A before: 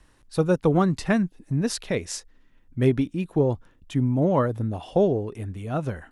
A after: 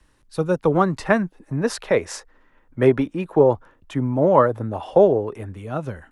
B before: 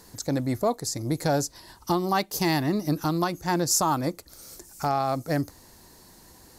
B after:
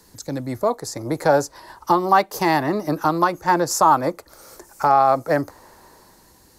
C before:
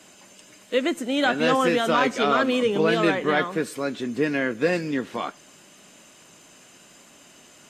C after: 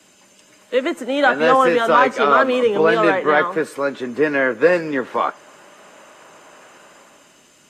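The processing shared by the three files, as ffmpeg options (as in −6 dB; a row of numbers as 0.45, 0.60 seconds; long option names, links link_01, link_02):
-filter_complex "[0:a]bandreject=frequency=710:width=12,acrossover=split=110|460|1700[link_01][link_02][link_03][link_04];[link_03]dynaudnorm=framelen=110:gausssize=13:maxgain=16dB[link_05];[link_01][link_02][link_05][link_04]amix=inputs=4:normalize=0,volume=-1.5dB"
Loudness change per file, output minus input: +4.0, +6.5, +6.0 LU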